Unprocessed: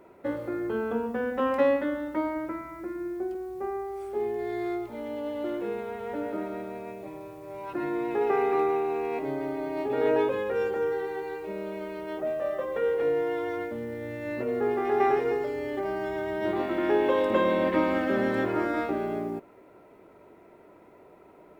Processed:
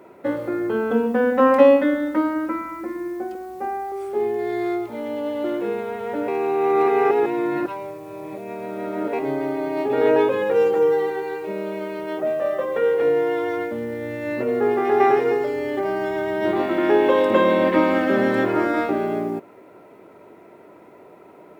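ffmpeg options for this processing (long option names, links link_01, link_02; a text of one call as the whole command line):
ffmpeg -i in.wav -filter_complex "[0:a]asettb=1/sr,asplit=3[link_01][link_02][link_03];[link_01]atrim=end=0.904[link_04];[link_02]atrim=start=0.9:end=3.92,asetpts=PTS-STARTPTS,afade=type=in:duration=0.004:curve=qsin,afade=type=out:start_time=3.016:duration=0.004:curve=qsin,aecho=1:1:3.9:0.63,atrim=end_sample=133182[link_05];[link_03]atrim=start=3.916[link_06];[link_04][link_05]acrossfade=duration=0.004:curve1=hsin:curve2=qsin[link_07];[link_07][link_06]acrossfade=duration=0.004:curve1=qsin:curve2=hsin,asettb=1/sr,asplit=3[link_08][link_09][link_10];[link_08]atrim=end=10.414[link_11];[link_09]atrim=start=10.41:end=11.1,asetpts=PTS-STARTPTS,afade=type=in:duration=0.004:curve=qsin,afade=type=out:start_time=0.686:duration=0.004:curve=qsin,aecho=1:1:6.1:0.7,atrim=end_sample=30429[link_12];[link_10]atrim=start=11.096[link_13];[link_11][link_12]acrossfade=duration=0.004:curve1=hsin:curve2=qsin[link_14];[link_14][link_13]acrossfade=duration=0.004:curve1=qsin:curve2=hsin,asplit=3[link_15][link_16][link_17];[link_15]atrim=end=6.282[link_18];[link_16]atrim=start=6.278:end=9.132,asetpts=PTS-STARTPTS,areverse[link_19];[link_17]atrim=start=9.128[link_20];[link_18][link_19]acrossfade=duration=0.004:curve1=hsin:curve2=hsin[link_21];[link_21][link_20]acrossfade=duration=0.004:curve1=hsin:curve2=hsin,highpass=110,volume=7dB" out.wav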